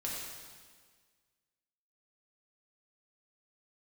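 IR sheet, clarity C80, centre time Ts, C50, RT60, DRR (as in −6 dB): 1.5 dB, 92 ms, −0.5 dB, 1.6 s, −5.0 dB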